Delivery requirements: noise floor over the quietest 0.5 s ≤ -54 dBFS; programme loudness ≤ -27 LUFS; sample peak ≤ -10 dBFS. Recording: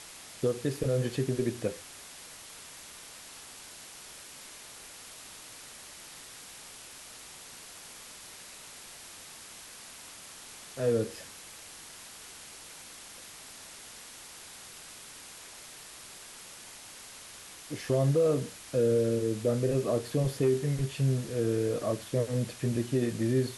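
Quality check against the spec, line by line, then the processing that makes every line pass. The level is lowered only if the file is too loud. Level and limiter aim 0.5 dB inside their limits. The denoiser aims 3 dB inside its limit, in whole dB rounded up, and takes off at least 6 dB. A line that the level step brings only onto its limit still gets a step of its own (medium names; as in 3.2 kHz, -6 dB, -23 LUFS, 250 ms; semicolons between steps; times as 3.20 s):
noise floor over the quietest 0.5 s -48 dBFS: fail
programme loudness -30.0 LUFS: pass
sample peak -16.5 dBFS: pass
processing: noise reduction 9 dB, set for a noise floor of -48 dBFS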